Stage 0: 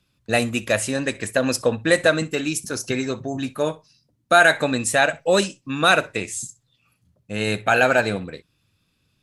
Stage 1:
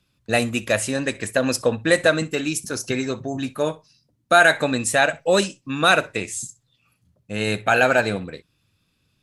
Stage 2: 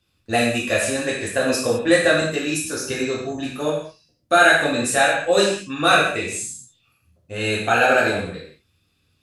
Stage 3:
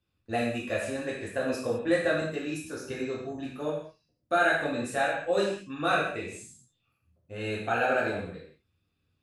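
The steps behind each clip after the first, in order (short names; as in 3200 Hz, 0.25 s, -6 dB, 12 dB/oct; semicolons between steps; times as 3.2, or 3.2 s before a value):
nothing audible
non-linear reverb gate 0.24 s falling, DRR -5 dB; gain -4.5 dB
bell 8800 Hz -10.5 dB 2.8 oct; gain -8.5 dB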